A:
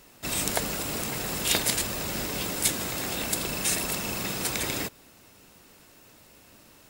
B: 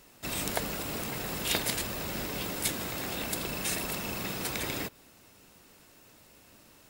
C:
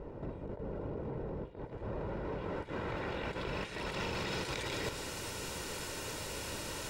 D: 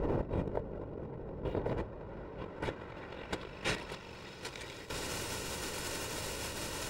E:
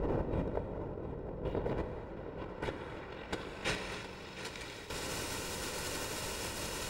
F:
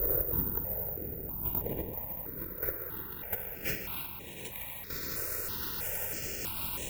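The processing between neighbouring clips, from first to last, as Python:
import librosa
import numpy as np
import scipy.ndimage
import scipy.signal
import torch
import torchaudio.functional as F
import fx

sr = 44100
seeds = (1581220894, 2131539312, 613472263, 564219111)

y1 = fx.dynamic_eq(x, sr, hz=7800.0, q=0.83, threshold_db=-42.0, ratio=4.0, max_db=-5)
y1 = F.gain(torch.from_numpy(y1), -3.0).numpy()
y2 = y1 + 0.44 * np.pad(y1, (int(2.1 * sr / 1000.0), 0))[:len(y1)]
y2 = fx.over_compress(y2, sr, threshold_db=-44.0, ratio=-1.0)
y2 = fx.filter_sweep_lowpass(y2, sr, from_hz=580.0, to_hz=10000.0, start_s=1.47, end_s=5.22, q=0.74)
y2 = F.gain(torch.from_numpy(y2), 7.5).numpy()
y3 = fx.over_compress(y2, sr, threshold_db=-46.0, ratio=-0.5)
y3 = F.gain(torch.from_numpy(y3), 8.0).numpy()
y4 = y3 + 10.0 ** (-13.0 / 20.0) * np.pad(y3, (int(714 * sr / 1000.0), 0))[:len(y3)]
y4 = fx.rev_gated(y4, sr, seeds[0], gate_ms=340, shape='flat', drr_db=5.5)
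y4 = F.gain(torch.from_numpy(y4), -1.0).numpy()
y5 = fx.echo_feedback(y4, sr, ms=312, feedback_pct=52, wet_db=-11.0)
y5 = (np.kron(y5[::3], np.eye(3)[0]) * 3)[:len(y5)]
y5 = fx.phaser_held(y5, sr, hz=3.1, low_hz=880.0, high_hz=4800.0)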